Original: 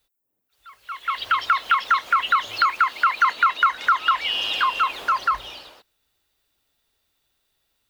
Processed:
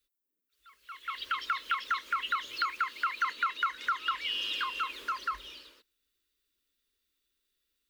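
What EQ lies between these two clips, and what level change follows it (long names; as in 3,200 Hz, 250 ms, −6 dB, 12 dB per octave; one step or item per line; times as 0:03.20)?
phaser with its sweep stopped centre 310 Hz, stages 4
−8.0 dB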